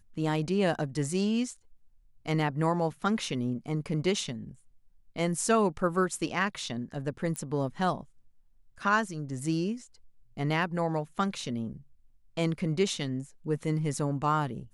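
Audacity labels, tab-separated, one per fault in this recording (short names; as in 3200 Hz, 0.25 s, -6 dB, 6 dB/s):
7.360000	7.360000	pop -20 dBFS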